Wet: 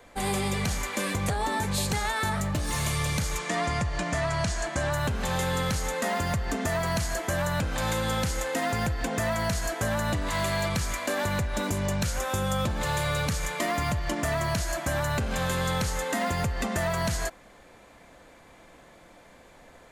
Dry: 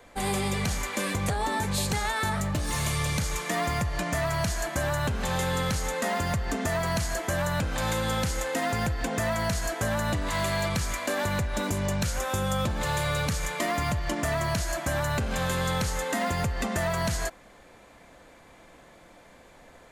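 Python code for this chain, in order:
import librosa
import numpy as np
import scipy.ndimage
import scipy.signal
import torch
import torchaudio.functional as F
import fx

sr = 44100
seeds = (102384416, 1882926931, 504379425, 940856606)

y = fx.lowpass(x, sr, hz=8800.0, slope=24, at=(3.38, 4.93))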